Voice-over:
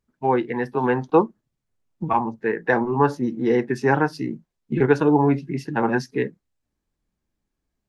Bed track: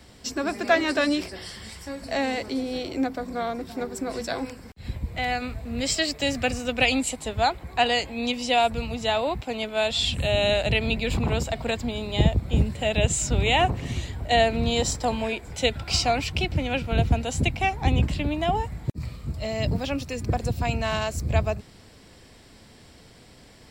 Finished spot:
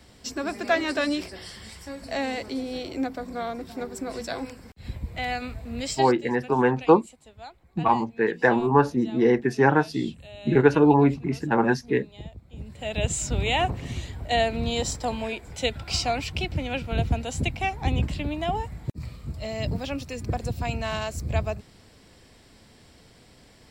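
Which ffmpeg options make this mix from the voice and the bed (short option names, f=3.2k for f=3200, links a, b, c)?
-filter_complex "[0:a]adelay=5750,volume=0dB[a];[1:a]volume=15dB,afade=t=out:st=5.74:d=0.46:silence=0.125893,afade=t=in:st=12.57:d=0.52:silence=0.133352[b];[a][b]amix=inputs=2:normalize=0"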